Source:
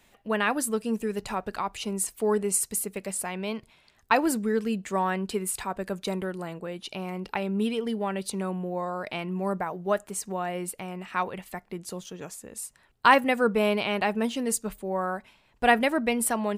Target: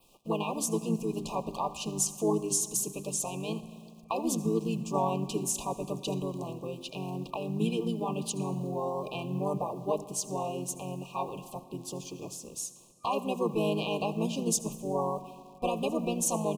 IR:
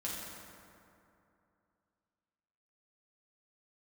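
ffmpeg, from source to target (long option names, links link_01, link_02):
-filter_complex "[0:a]alimiter=limit=-16.5dB:level=0:latency=1:release=245,acrusher=bits=9:mix=0:aa=0.000001,bandreject=frequency=50:width_type=h:width=6,bandreject=frequency=100:width_type=h:width=6,bandreject=frequency=150:width_type=h:width=6,bandreject=frequency=200:width_type=h:width=6,bandreject=frequency=250:width_type=h:width=6,bandreject=frequency=300:width_type=h:width=6,bandreject=frequency=350:width_type=h:width=6,bandreject=frequency=400:width_type=h:width=6,asplit=2[link_01][link_02];[link_02]adelay=367.3,volume=-28dB,highshelf=frequency=4000:gain=-8.27[link_03];[link_01][link_03]amix=inputs=2:normalize=0,asplit=2[link_04][link_05];[1:a]atrim=start_sample=2205,asetrate=48510,aresample=44100,adelay=77[link_06];[link_05][link_06]afir=irnorm=-1:irlink=0,volume=-15.5dB[link_07];[link_04][link_07]amix=inputs=2:normalize=0,asplit=2[link_08][link_09];[link_09]asetrate=33038,aresample=44100,atempo=1.33484,volume=-2dB[link_10];[link_08][link_10]amix=inputs=2:normalize=0,adynamicequalizer=threshold=0.00355:dfrequency=6400:dqfactor=2.9:tfrequency=6400:tqfactor=2.9:attack=5:release=100:ratio=0.375:range=2.5:mode=boostabove:tftype=bell,afftfilt=real='re*(1-between(b*sr/4096,1200,2400))':imag='im*(1-between(b*sr/4096,1200,2400))':win_size=4096:overlap=0.75,volume=-4dB"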